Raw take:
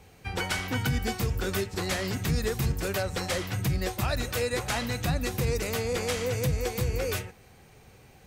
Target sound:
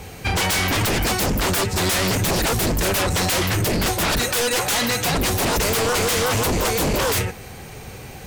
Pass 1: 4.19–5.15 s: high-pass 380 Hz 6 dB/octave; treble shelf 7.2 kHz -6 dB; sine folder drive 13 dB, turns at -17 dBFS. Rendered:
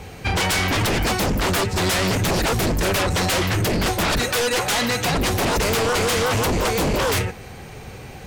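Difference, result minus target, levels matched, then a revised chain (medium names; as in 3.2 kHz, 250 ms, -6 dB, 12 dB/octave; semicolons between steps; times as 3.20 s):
8 kHz band -2.5 dB
4.19–5.15 s: high-pass 380 Hz 6 dB/octave; treble shelf 7.2 kHz +3.5 dB; sine folder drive 13 dB, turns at -17 dBFS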